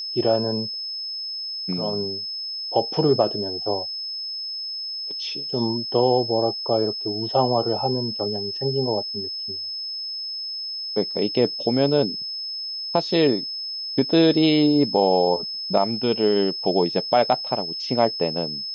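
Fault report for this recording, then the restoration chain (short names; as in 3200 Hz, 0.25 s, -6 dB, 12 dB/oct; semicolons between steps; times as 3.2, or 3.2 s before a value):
tone 5200 Hz -28 dBFS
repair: notch 5200 Hz, Q 30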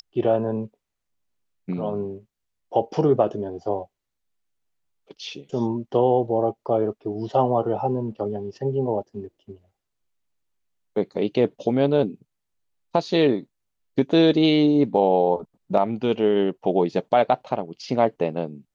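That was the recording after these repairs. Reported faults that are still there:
none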